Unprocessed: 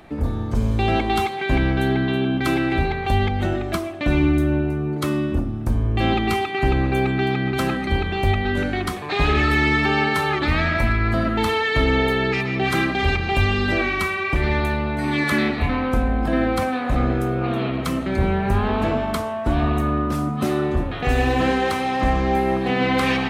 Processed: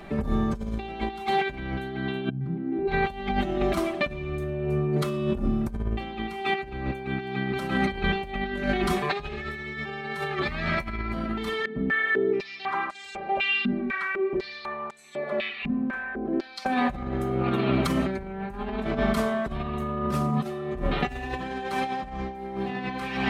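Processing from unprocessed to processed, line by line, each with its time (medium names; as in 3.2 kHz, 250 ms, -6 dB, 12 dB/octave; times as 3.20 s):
2.28–2.87 s: band-pass filter 100 Hz -> 380 Hz, Q 6.2
11.65–16.66 s: step-sequenced band-pass 4 Hz 220–7800 Hz
whole clip: treble shelf 5.1 kHz -4 dB; comb 5.1 ms, depth 82%; compressor with a negative ratio -23 dBFS, ratio -0.5; trim -3.5 dB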